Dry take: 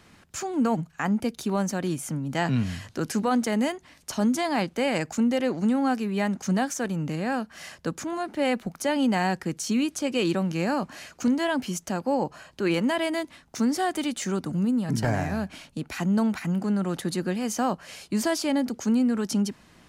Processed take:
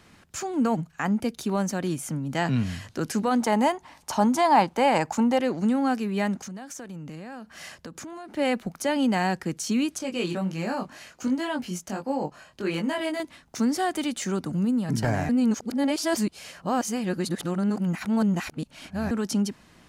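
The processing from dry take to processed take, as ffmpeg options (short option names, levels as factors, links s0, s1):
-filter_complex "[0:a]asettb=1/sr,asplit=3[s0][s1][s2];[s0]atrim=end=3.404[s3];[s1]atrim=start=3.4:end=5.39,asetpts=PTS-STARTPTS,afade=t=in:d=0.004:c=qsin,afade=t=out:st=1.986:d=0.004:c=qsin,equalizer=f=890:t=o:w=0.67:g=14.5[s4];[s2]atrim=start=5.386[s5];[s3][s4]acrossfade=d=0.004:c1=hsin:c2=qsin[s6];[s6][s5]acrossfade=d=0.004:c1=qsin:c2=hsin,asettb=1/sr,asplit=3[s7][s8][s9];[s7]atrim=end=6.414[s10];[s8]atrim=start=6.41:end=8.37,asetpts=PTS-STARTPTS,afade=t=in:d=0.004:c=qsin,afade=t=out:st=1.956:d=0.004:c=qsin,acompressor=threshold=0.0178:ratio=10:attack=3.2:release=140:knee=1:detection=peak[s11];[s9]atrim=start=8.366[s12];[s10][s11]acrossfade=d=0.004:c1=hsin:c2=qsin[s13];[s13][s12]acrossfade=d=0.004:c1=qsin:c2=hsin,asettb=1/sr,asplit=3[s14][s15][s16];[s14]atrim=end=9.984[s17];[s15]atrim=start=9.98:end=13.2,asetpts=PTS-STARTPTS,afade=t=in:d=0.004:c=qsin,afade=t=out:st=3.216:d=0.004:c=qsin,flanger=delay=18.5:depth=4.1:speed=1.4[s18];[s16]atrim=start=13.196[s19];[s17][s18]acrossfade=d=0.004:c1=hsin:c2=qsin[s20];[s20][s19]acrossfade=d=0.004:c1=qsin:c2=hsin,asplit=3[s21][s22][s23];[s21]atrim=end=15.292[s24];[s22]atrim=start=15.288:end=19.112,asetpts=PTS-STARTPTS,areverse[s25];[s23]atrim=start=19.108[s26];[s24][s25]acrossfade=d=0.004:c1=hsin:c2=hsin[s27];[s27][s26]acrossfade=d=0.004:c1=hsin:c2=hsin"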